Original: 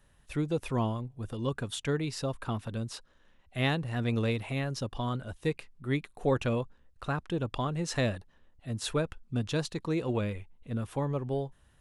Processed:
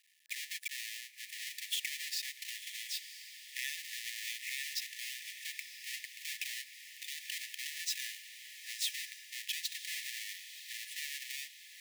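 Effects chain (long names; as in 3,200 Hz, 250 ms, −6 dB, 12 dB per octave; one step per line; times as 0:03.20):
each half-wave held at its own peak
in parallel at −1 dB: downward compressor, threshold −33 dBFS, peak gain reduction 13 dB
on the sum: frequency shifter −150 Hz
on a send: feedback delay with all-pass diffusion 1,009 ms, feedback 47%, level −12 dB
on the sum: brickwall limiter −17.5 dBFS, peak gain reduction 10 dB
linear-phase brick-wall high-pass 1,700 Hz
level −3.5 dB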